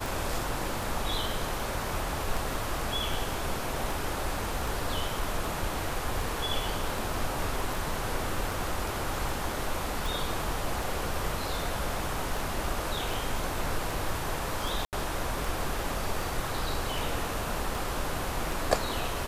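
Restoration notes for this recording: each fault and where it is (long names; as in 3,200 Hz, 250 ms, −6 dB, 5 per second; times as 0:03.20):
scratch tick 78 rpm
0:14.85–0:14.93: drop-out 78 ms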